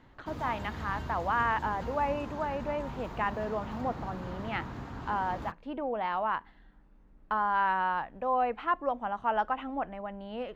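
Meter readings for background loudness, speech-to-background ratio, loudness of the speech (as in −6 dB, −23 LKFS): −41.5 LKFS, 9.0 dB, −32.5 LKFS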